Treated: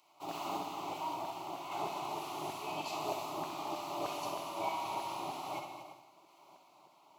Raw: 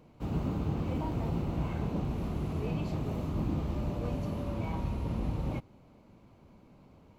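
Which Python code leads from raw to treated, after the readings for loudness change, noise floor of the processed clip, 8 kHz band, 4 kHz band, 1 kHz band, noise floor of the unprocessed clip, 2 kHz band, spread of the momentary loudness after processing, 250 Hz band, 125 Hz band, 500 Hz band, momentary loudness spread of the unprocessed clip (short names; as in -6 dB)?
-5.5 dB, -64 dBFS, n/a, +8.0 dB, +7.0 dB, -59 dBFS, +3.0 dB, 5 LU, -12.5 dB, -23.5 dB, -2.0 dB, 2 LU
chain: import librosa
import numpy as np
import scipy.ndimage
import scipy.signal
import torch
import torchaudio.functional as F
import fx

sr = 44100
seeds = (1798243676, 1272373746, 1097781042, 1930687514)

p1 = fx.fixed_phaser(x, sr, hz=330.0, stages=8)
p2 = fx.tremolo_random(p1, sr, seeds[0], hz=3.5, depth_pct=55)
p3 = fx.filter_lfo_highpass(p2, sr, shape='saw_down', hz=3.2, low_hz=590.0, high_hz=1600.0, q=0.93)
p4 = scipy.signal.sosfilt(scipy.signal.butter(2, 55.0, 'highpass', fs=sr, output='sos'), p3)
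p5 = p4 + fx.echo_multitap(p4, sr, ms=(65, 235, 336), db=(-7.0, -10.0, -14.0), dry=0)
p6 = fx.rev_gated(p5, sr, seeds[1], gate_ms=210, shape='flat', drr_db=6.5)
y = p6 * librosa.db_to_amplitude(11.0)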